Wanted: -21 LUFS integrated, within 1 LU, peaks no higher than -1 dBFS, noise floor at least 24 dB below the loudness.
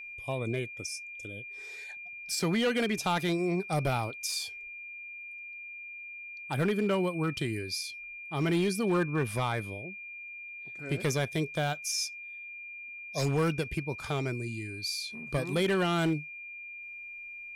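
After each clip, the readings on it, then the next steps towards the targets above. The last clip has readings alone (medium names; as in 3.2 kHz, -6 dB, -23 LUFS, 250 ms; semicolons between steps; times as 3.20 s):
clipped samples 1.0%; clipping level -22.0 dBFS; steady tone 2.4 kHz; tone level -41 dBFS; loudness -32.5 LUFS; peak level -22.0 dBFS; loudness target -21.0 LUFS
-> clip repair -22 dBFS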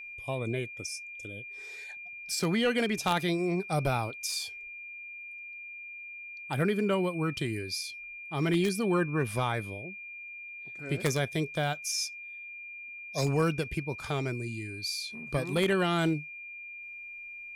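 clipped samples 0.0%; steady tone 2.4 kHz; tone level -41 dBFS
-> band-stop 2.4 kHz, Q 30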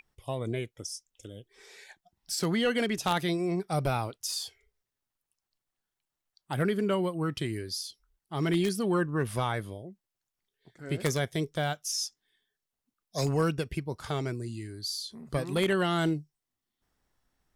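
steady tone not found; loudness -31.0 LUFS; peak level -13.0 dBFS; loudness target -21.0 LUFS
-> trim +10 dB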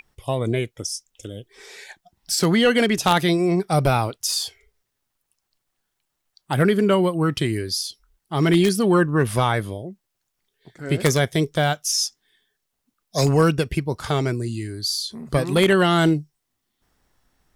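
loudness -21.0 LUFS; peak level -3.0 dBFS; noise floor -78 dBFS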